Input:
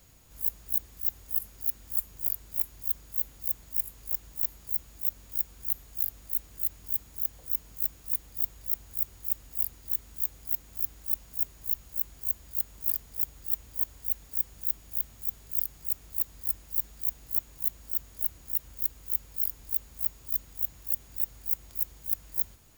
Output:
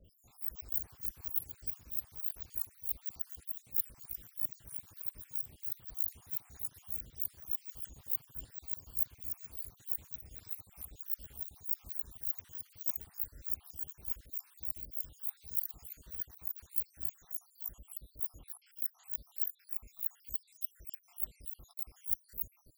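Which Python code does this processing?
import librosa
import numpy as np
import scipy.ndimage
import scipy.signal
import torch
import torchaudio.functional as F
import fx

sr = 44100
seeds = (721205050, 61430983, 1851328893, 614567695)

y = fx.spec_dropout(x, sr, seeds[0], share_pct=84)
y = fx.echo_pitch(y, sr, ms=240, semitones=5, count=3, db_per_echo=-3.0)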